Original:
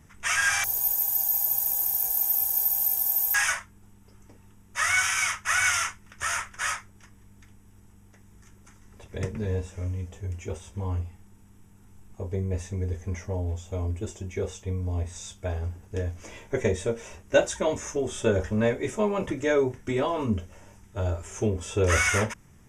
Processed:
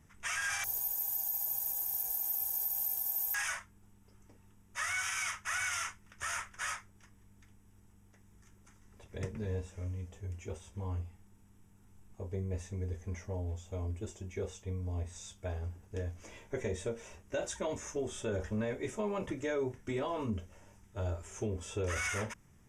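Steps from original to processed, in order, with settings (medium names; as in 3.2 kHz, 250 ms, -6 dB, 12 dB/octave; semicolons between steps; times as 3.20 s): peak limiter -18 dBFS, peak gain reduction 10 dB; trim -8 dB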